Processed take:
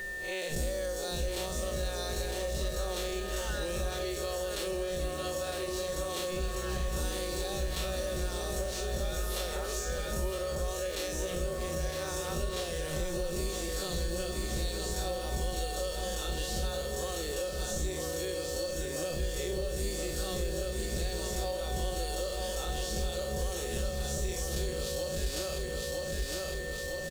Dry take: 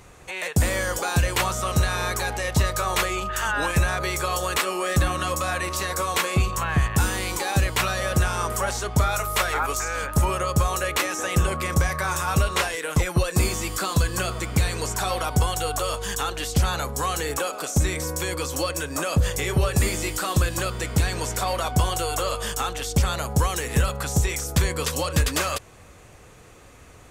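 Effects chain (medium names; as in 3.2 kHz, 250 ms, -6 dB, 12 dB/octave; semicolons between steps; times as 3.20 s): spectral blur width 96 ms; ten-band graphic EQ 125 Hz -8 dB, 500 Hz +9 dB, 1 kHz -10 dB, 2 kHz -9 dB, 4 kHz +7 dB; whistle 1.8 kHz -37 dBFS; comb 5.4 ms, depth 65%; on a send: feedback delay 958 ms, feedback 45%, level -6.5 dB; on the sum: compression 6:1, threshold -33 dBFS, peak gain reduction 15 dB; in parallel at -6 dB: bit crusher 7-bit; on the sum: bass shelf 92 Hz +7 dB; trim -3.5 dB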